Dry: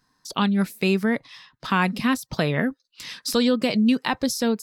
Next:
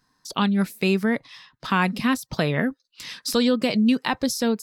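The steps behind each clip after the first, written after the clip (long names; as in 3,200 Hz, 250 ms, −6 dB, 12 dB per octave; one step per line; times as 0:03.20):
no processing that can be heard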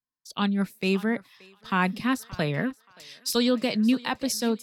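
feedback echo with a high-pass in the loop 577 ms, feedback 41%, high-pass 490 Hz, level −14.5 dB
multiband upward and downward expander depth 70%
level −3.5 dB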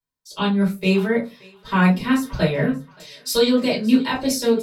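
convolution reverb, pre-delay 4 ms, DRR −6.5 dB
level −4.5 dB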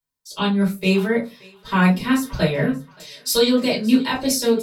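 high-shelf EQ 4,700 Hz +5 dB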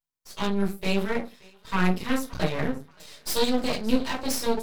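half-wave rectification
level −3 dB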